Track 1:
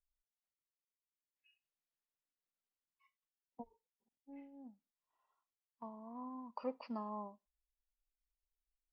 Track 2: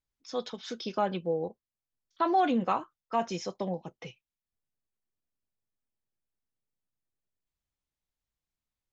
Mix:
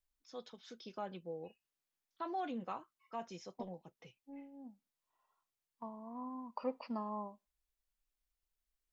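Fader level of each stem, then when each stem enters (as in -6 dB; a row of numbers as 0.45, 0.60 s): +2.5, -14.5 dB; 0.00, 0.00 s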